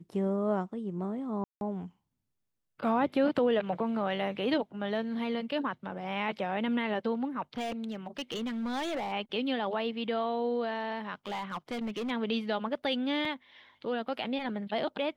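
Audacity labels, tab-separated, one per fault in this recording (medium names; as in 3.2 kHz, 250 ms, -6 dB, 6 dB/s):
1.440000	1.610000	dropout 171 ms
7.570000	9.130000	clipped -30 dBFS
11.260000	12.110000	clipped -31 dBFS
13.250000	13.250000	dropout 3.1 ms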